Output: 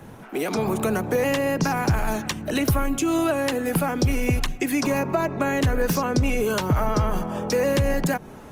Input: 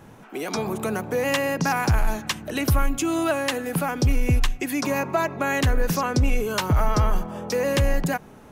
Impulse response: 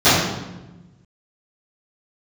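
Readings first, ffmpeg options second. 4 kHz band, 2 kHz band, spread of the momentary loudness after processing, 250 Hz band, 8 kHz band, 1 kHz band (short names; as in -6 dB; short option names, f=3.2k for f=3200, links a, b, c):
-1.0 dB, -1.0 dB, 5 LU, +3.0 dB, 0.0 dB, -0.5 dB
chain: -filter_complex "[0:a]acrossover=split=110|600[a][b][c];[a]acompressor=threshold=-30dB:ratio=4[d];[b]acompressor=threshold=-26dB:ratio=4[e];[c]acompressor=threshold=-32dB:ratio=4[f];[d][e][f]amix=inputs=3:normalize=0,volume=5dB" -ar 48000 -c:a libopus -b:a 24k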